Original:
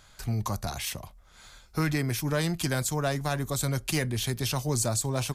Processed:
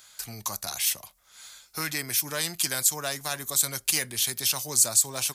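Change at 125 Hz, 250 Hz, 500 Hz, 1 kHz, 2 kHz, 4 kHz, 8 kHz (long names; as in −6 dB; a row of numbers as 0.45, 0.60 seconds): −14.0, −10.5, −6.0, −2.5, +1.0, +5.5, +9.5 decibels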